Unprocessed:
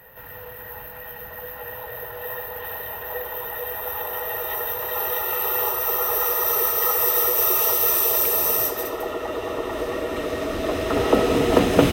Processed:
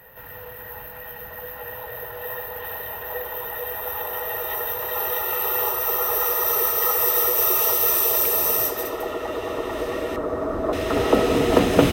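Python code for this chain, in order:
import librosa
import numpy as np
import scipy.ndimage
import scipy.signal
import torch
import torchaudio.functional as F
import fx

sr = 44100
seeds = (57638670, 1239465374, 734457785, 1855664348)

y = fx.high_shelf_res(x, sr, hz=1800.0, db=-13.0, q=1.5, at=(10.16, 10.73))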